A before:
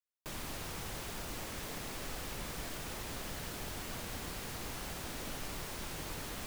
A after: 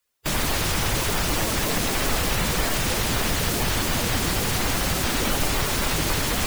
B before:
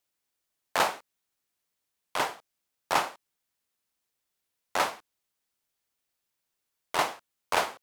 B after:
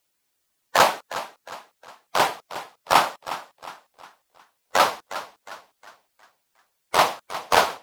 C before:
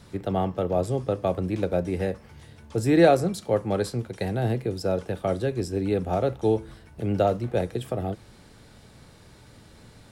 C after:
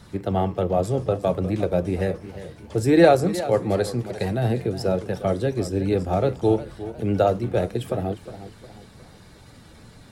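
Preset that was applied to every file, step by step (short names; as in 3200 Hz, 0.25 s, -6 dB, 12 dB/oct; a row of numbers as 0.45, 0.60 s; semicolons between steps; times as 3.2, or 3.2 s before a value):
bin magnitudes rounded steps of 15 dB; warbling echo 0.357 s, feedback 41%, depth 99 cents, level -14 dB; match loudness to -23 LUFS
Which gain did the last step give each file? +19.0, +9.0, +3.0 dB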